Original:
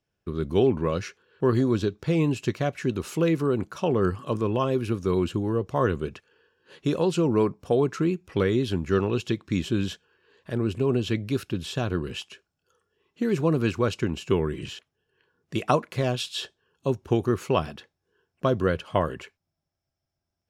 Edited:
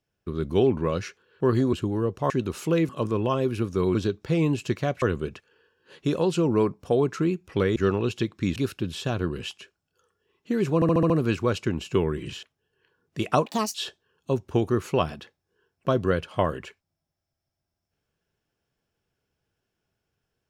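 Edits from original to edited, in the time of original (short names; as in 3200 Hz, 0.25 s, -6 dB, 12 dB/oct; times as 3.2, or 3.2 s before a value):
1.73–2.8 swap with 5.25–5.82
3.39–4.19 cut
8.56–8.85 cut
9.65–11.27 cut
13.46 stutter 0.07 s, 6 plays
15.82–16.31 speed 172%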